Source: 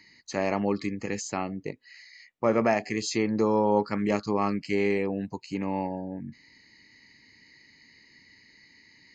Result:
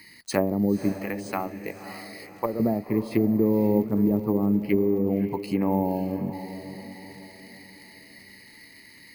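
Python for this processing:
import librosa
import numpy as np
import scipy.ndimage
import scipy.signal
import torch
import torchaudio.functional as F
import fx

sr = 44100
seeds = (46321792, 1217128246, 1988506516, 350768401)

y = fx.env_lowpass_down(x, sr, base_hz=330.0, full_db=-22.5)
y = fx.peak_eq(y, sr, hz=170.0, db=-14.5, octaves=2.5, at=(0.92, 2.6))
y = np.repeat(scipy.signal.resample_poly(y, 1, 3), 3)[:len(y)]
y = fx.dmg_crackle(y, sr, seeds[0], per_s=41.0, level_db=-49.0)
y = fx.high_shelf(y, sr, hz=4600.0, db=-4.5, at=(4.54, 5.71))
y = fx.echo_diffused(y, sr, ms=543, feedback_pct=44, wet_db=-11.0)
y = F.gain(torch.from_numpy(y), 6.5).numpy()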